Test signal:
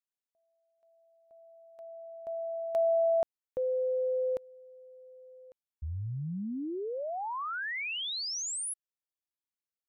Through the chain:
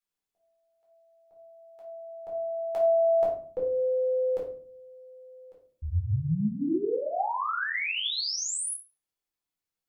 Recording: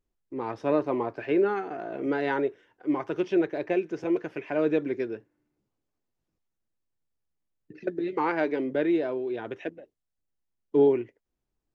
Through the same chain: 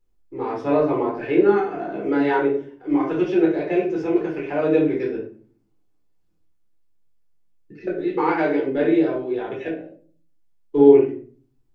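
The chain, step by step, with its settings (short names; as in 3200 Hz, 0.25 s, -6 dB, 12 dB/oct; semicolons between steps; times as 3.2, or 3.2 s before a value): shoebox room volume 390 m³, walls furnished, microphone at 4.1 m; gain -1.5 dB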